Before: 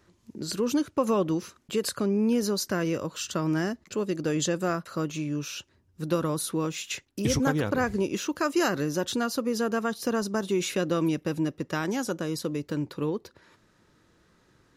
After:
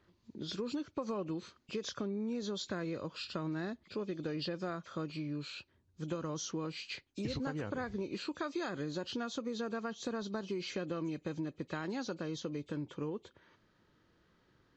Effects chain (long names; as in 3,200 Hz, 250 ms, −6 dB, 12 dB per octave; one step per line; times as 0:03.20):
hearing-aid frequency compression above 2,100 Hz 1.5 to 1
downward compressor, threshold −27 dBFS, peak gain reduction 8 dB
level −7 dB